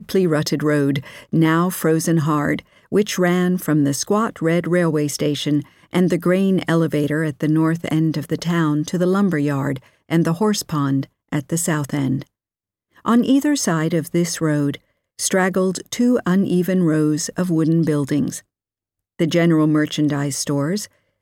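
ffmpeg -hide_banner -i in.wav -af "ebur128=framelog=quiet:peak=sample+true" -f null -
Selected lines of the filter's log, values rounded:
Integrated loudness:
  I:         -19.2 LUFS
  Threshold: -29.4 LUFS
Loudness range:
  LRA:         1.8 LU
  Threshold: -39.6 LUFS
  LRA low:   -20.6 LUFS
  LRA high:  -18.8 LUFS
Sample peak:
  Peak:       -5.9 dBFS
True peak:
  Peak:       -5.9 dBFS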